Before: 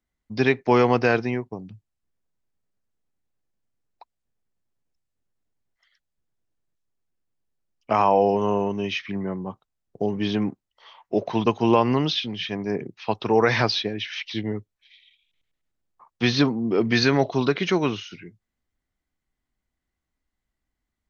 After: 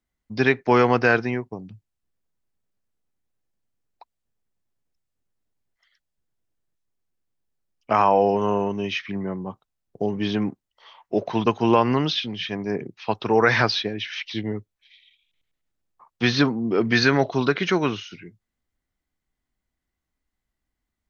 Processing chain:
dynamic equaliser 1,500 Hz, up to +6 dB, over −39 dBFS, Q 2.1

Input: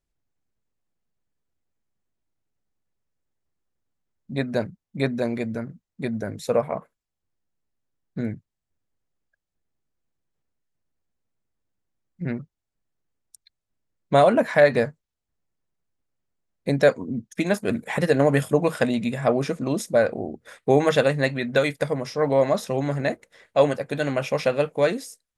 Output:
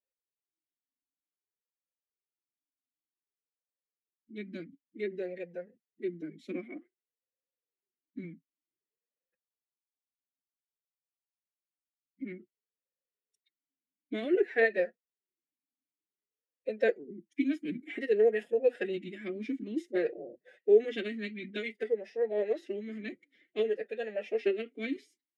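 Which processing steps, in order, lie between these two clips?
phase-vocoder pitch shift with formants kept +7.5 semitones
formant filter swept between two vowels e-i 0.54 Hz

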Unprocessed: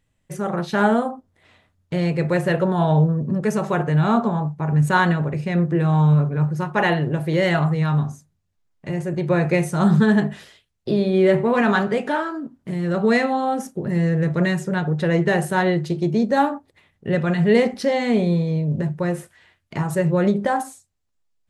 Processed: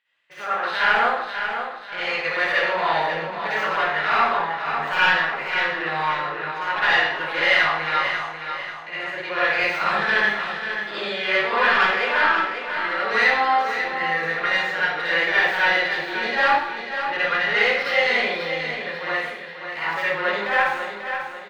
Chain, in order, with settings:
stylus tracing distortion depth 0.19 ms
Bessel high-pass filter 2,500 Hz, order 2
high-shelf EQ 5,400 Hz −3.5 dB
in parallel at 0 dB: brickwall limiter −22 dBFS, peak gain reduction 12 dB
on the sum: soft clipping −19.5 dBFS, distortion −14 dB
high-frequency loss of the air 340 metres
repeating echo 541 ms, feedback 42%, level −8 dB
convolution reverb RT60 0.70 s, pre-delay 48 ms, DRR −9.5 dB
level +4.5 dB

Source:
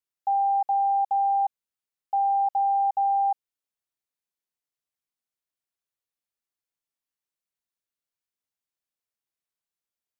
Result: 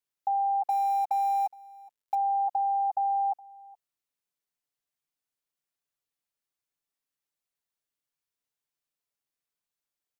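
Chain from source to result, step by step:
0:00.68–0:02.15: mu-law and A-law mismatch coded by mu
comb filter 6.9 ms, depth 36%
single-tap delay 417 ms −23 dB

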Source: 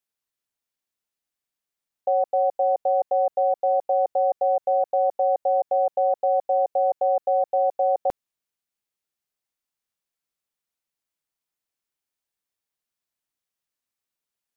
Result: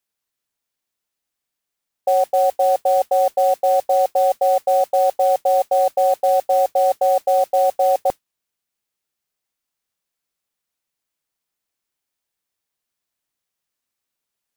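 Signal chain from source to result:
noise that follows the level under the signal 22 dB
level +5 dB

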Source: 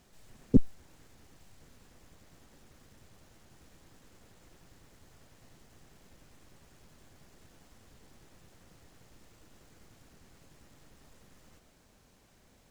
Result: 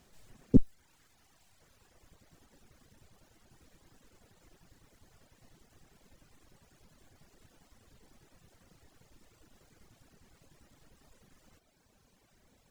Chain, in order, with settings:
reverb reduction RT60 1.9 s

